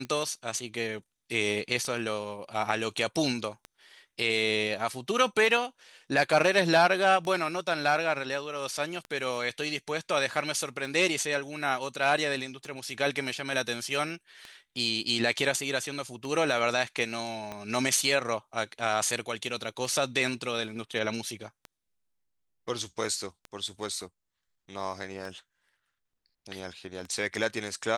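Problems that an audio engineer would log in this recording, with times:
scratch tick 33 1/3 rpm −25 dBFS
0:17.52: click −22 dBFS

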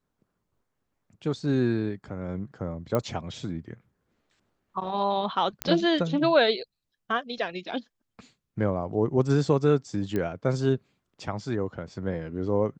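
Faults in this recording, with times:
0:02.95: click −14 dBFS
0:05.62: click −9 dBFS
0:10.16: click −17 dBFS

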